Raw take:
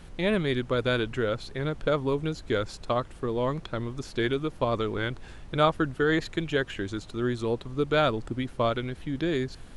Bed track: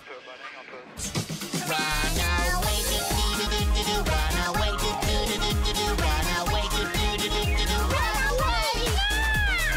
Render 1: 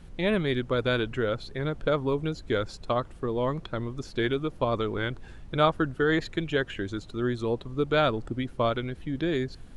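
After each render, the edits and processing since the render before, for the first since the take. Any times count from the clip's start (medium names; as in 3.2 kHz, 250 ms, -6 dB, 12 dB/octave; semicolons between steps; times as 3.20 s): noise reduction 6 dB, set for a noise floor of -47 dBFS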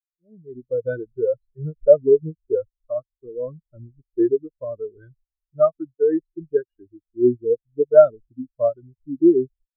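level rider gain up to 15 dB; spectral contrast expander 4:1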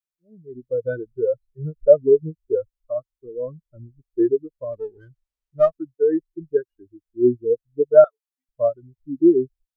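4.73–5.71 s: sliding maximum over 3 samples; 8.04–8.49 s: Chebyshev high-pass 760 Hz, order 5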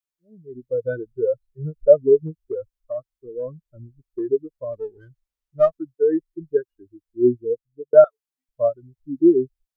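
2.21–4.31 s: compression, threshold -23 dBFS; 7.30–7.93 s: fade out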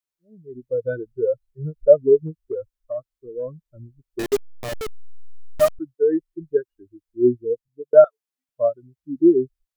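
4.19–5.79 s: send-on-delta sampling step -21.5 dBFS; 7.68–9.16 s: high-pass 130 Hz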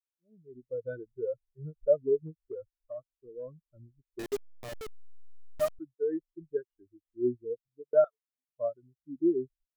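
trim -12 dB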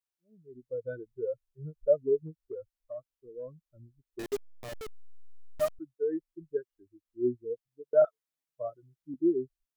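8.01–9.14 s: comb 6.2 ms, depth 78%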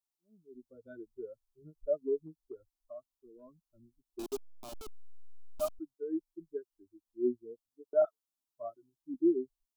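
static phaser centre 500 Hz, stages 6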